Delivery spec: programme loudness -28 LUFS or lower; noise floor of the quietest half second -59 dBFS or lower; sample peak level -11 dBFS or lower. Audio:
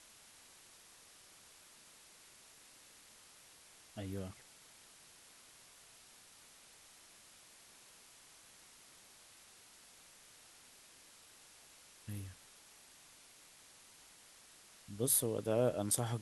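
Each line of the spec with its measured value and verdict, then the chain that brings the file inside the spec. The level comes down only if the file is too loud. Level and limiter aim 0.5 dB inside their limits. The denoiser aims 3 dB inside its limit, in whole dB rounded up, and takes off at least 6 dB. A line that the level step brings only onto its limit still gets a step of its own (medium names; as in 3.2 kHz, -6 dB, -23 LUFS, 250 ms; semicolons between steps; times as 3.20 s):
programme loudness -36.5 LUFS: pass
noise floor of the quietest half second -61 dBFS: pass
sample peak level -18.0 dBFS: pass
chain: none needed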